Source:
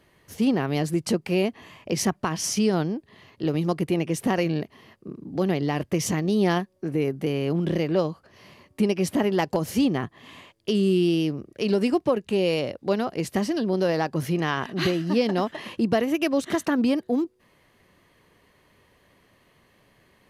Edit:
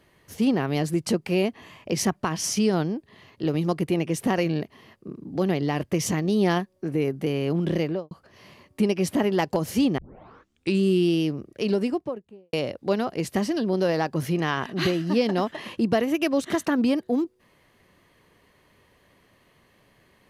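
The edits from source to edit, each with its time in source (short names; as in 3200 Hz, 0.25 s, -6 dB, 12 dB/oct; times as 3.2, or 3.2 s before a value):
7.82–8.11 studio fade out
9.98 tape start 0.83 s
11.52–12.53 studio fade out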